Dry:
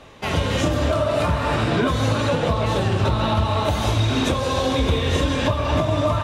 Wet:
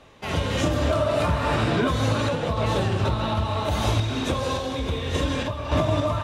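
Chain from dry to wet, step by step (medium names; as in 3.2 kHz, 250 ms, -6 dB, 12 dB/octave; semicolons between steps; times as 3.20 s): random-step tremolo; trim -1.5 dB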